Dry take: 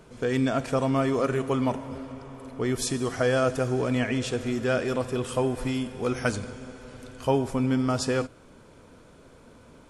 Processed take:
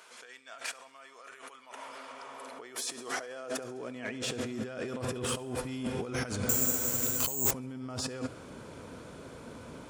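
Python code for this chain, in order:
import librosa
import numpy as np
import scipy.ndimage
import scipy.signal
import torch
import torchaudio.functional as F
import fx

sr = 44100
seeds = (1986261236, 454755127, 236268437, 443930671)

p1 = fx.low_shelf(x, sr, hz=87.0, db=-12.0, at=(3.15, 3.61))
p2 = fx.over_compress(p1, sr, threshold_db=-35.0, ratio=-1.0)
p3 = 10.0 ** (-23.0 / 20.0) * np.tanh(p2 / 10.0 ** (-23.0 / 20.0))
p4 = fx.filter_sweep_highpass(p3, sr, from_hz=1200.0, to_hz=67.0, start_s=1.93, end_s=5.28, q=0.7)
p5 = p4 + fx.echo_thinned(p4, sr, ms=69, feedback_pct=60, hz=420.0, wet_db=-22, dry=0)
p6 = fx.resample_bad(p5, sr, factor=6, down='none', up='zero_stuff', at=(6.49, 7.51))
y = p6 * 10.0 ** (-1.0 / 20.0)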